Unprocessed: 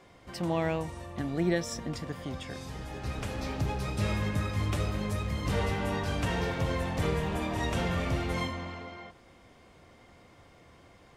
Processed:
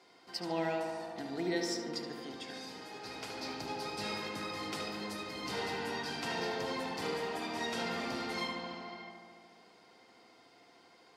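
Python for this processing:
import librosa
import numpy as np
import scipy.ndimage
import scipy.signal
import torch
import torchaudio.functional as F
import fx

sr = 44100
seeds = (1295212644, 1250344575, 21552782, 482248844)

y = scipy.signal.sosfilt(scipy.signal.butter(2, 320.0, 'highpass', fs=sr, output='sos'), x)
y = fx.peak_eq(y, sr, hz=4700.0, db=12.0, octaves=0.44)
y = fx.notch_comb(y, sr, f0_hz=570.0)
y = fx.echo_filtered(y, sr, ms=73, feedback_pct=79, hz=3300.0, wet_db=-5.0)
y = y * librosa.db_to_amplitude(-4.0)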